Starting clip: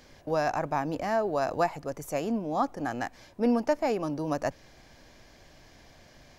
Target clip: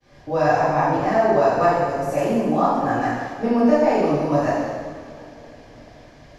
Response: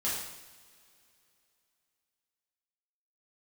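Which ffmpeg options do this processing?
-filter_complex "[0:a]highshelf=f=4200:g=-10,agate=range=0.0224:threshold=0.00282:ratio=3:detection=peak[s0];[1:a]atrim=start_sample=2205,asetrate=25578,aresample=44100[s1];[s0][s1]afir=irnorm=-1:irlink=0"

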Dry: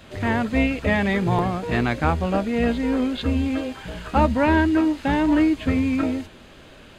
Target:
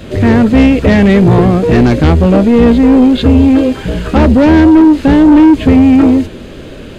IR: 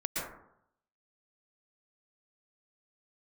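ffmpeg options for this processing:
-af "aeval=exprs='0.473*sin(PI/2*2.24*val(0)/0.473)':c=same,lowshelf=f=610:t=q:w=1.5:g=7,asoftclip=type=tanh:threshold=0.841,volume=1.12"

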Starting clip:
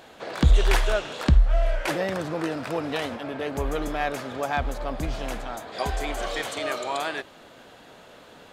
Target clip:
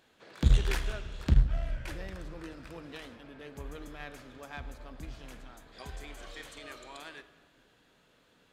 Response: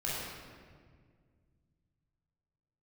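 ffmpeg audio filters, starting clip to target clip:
-filter_complex "[0:a]equalizer=f=720:w=1.4:g=-8.5,aeval=exprs='0.376*(cos(1*acos(clip(val(0)/0.376,-1,1)))-cos(1*PI/2))+0.0841*(cos(3*acos(clip(val(0)/0.376,-1,1)))-cos(3*PI/2))':c=same,asplit=2[s0][s1];[1:a]atrim=start_sample=2205,asetrate=48510,aresample=44100[s2];[s1][s2]afir=irnorm=-1:irlink=0,volume=0.168[s3];[s0][s3]amix=inputs=2:normalize=0,volume=0.501"

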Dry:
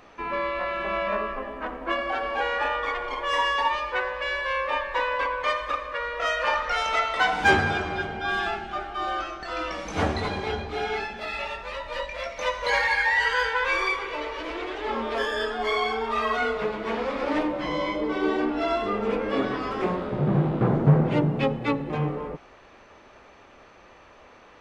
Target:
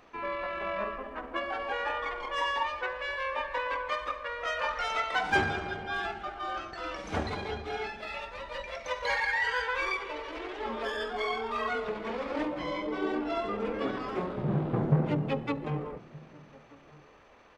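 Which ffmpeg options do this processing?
-filter_complex "[0:a]atempo=1.4,asplit=2[s0][s1];[s1]adelay=1224,volume=0.0708,highshelf=f=4000:g=-27.6[s2];[s0][s2]amix=inputs=2:normalize=0,volume=0.501"

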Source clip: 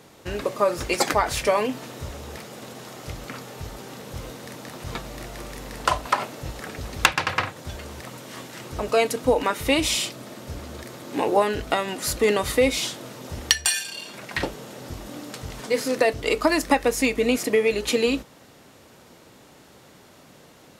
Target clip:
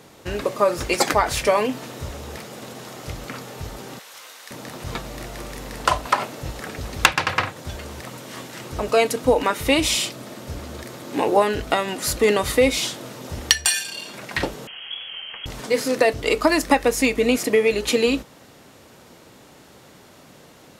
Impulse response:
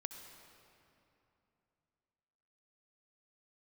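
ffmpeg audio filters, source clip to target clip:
-filter_complex "[0:a]asettb=1/sr,asplit=3[s0][s1][s2];[s0]atrim=end=3.994[s3];[s1]atrim=start=3.99:end=4.51,asetpts=PTS-STARTPTS,afade=t=in:d=0.004:c=qsin,afade=t=out:st=0.516:d=0.004:c=qsin,highpass=1200[s4];[s2]atrim=start=4.506[s5];[s3][s4]acrossfade=d=0.004:c1=hsin:c2=qsin[s6];[s6][s5]acrossfade=d=0.004:c1=qsin:c2=hsin,asettb=1/sr,asplit=3[s7][s8][s9];[s7]atrim=end=14.674[s10];[s8]atrim=start=14.67:end=15.46,asetpts=PTS-STARTPTS,afade=t=in:d=0.004:c=qsin,afade=t=out:st=0.786:d=0.004:c=qsin,lowpass=f=2900:t=q:w=0.5098,lowpass=f=2900:t=q:w=0.6013,lowpass=f=2900:t=q:w=0.9,lowpass=f=2900:t=q:w=2.563,afreqshift=-3400[s11];[s9]atrim=start=15.456[s12];[s10][s11]acrossfade=d=0.004:c1=hsin:c2=qsin[s13];[s13][s12]acrossfade=d=0.004:c1=qsin:c2=hsin,volume=1.33"

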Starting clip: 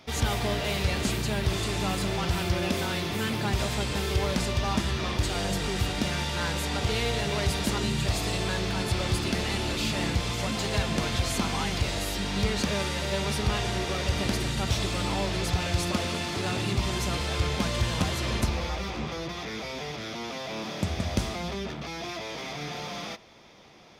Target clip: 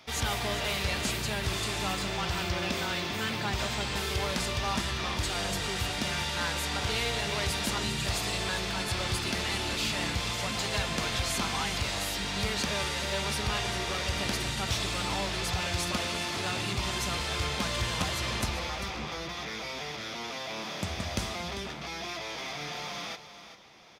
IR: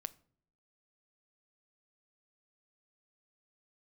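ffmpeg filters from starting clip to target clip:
-filter_complex "[0:a]asettb=1/sr,asplit=3[s0][s1][s2];[s0]atrim=end=1.934[s3];[s1]atrim=start=1.93:end=3.96,asetpts=PTS-STARTPTS,afade=t=in:d=0.004:c=qsin,afade=t=out:st=2.026:d=0.004:c=qsin,equalizer=f=11000:w=1.6:g=-9[s4];[s2]atrim=start=3.956[s5];[s3][s4]acrossfade=d=0.004:c1=hsin:c2=qsin[s6];[s6][s5]acrossfade=d=0.004:c1=qsin:c2=hsin,aecho=1:1:396:0.251,acrossover=split=710[s7][s8];[s8]acontrast=69[s9];[s7][s9]amix=inputs=2:normalize=0,volume=0.473"

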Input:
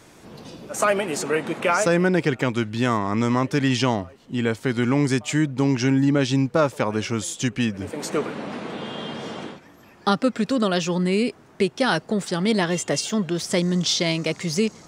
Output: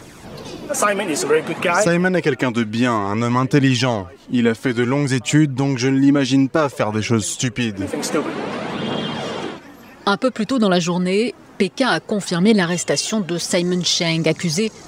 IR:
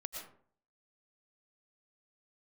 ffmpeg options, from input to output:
-filter_complex "[0:a]asplit=2[s0][s1];[s1]acompressor=threshold=0.0398:ratio=6,volume=1.41[s2];[s0][s2]amix=inputs=2:normalize=0,aphaser=in_gain=1:out_gain=1:delay=4.3:decay=0.42:speed=0.56:type=triangular"

